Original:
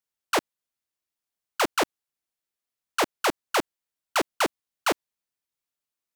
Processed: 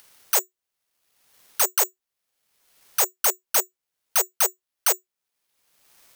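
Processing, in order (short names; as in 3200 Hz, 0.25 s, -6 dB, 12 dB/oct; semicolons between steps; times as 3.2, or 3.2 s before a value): Chebyshev high-pass 370 Hz, order 10; high shelf 8300 Hz -11 dB; in parallel at -2.5 dB: upward compressor, threshold -21 dBFS; on the sum: careless resampling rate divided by 6×, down none, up zero stuff; gain -8.5 dB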